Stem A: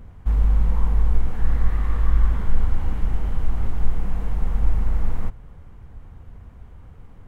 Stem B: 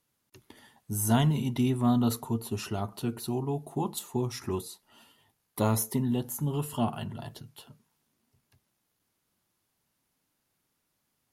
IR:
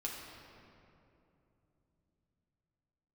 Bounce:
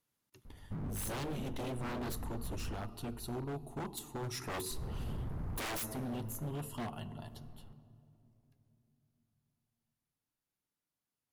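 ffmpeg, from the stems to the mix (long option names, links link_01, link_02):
-filter_complex "[0:a]lowpass=1500,adelay=450,volume=-12dB,asplit=3[link_01][link_02][link_03];[link_01]atrim=end=2.85,asetpts=PTS-STARTPTS,afade=type=out:start_time=2.846:duration=0.004:curve=hsin[link_04];[link_02]atrim=start=2.85:end=4.71,asetpts=PTS-STARTPTS,volume=0[link_05];[link_03]atrim=start=4.71,asetpts=PTS-STARTPTS,afade=type=in:duration=0.004:curve=hsin[link_06];[link_04][link_05][link_06]concat=n=3:v=0:a=1,asplit=2[link_07][link_08];[link_08]volume=-20.5dB[link_09];[1:a]aeval=exprs='0.251*sin(PI/2*1.41*val(0)/0.251)':channel_layout=same,volume=-6.5dB,afade=type=in:start_time=4.18:duration=0.41:silence=0.354813,afade=type=out:start_time=5.69:duration=0.22:silence=0.316228,afade=type=out:start_time=7.35:duration=0.32:silence=0.446684,asplit=3[link_10][link_11][link_12];[link_11]volume=-11.5dB[link_13];[link_12]apad=whole_len=340831[link_14];[link_07][link_14]sidechaincompress=threshold=-56dB:ratio=8:attack=45:release=107[link_15];[2:a]atrim=start_sample=2205[link_16];[link_09][link_13]amix=inputs=2:normalize=0[link_17];[link_17][link_16]afir=irnorm=-1:irlink=0[link_18];[link_15][link_10][link_18]amix=inputs=3:normalize=0,aeval=exprs='0.0211*(abs(mod(val(0)/0.0211+3,4)-2)-1)':channel_layout=same"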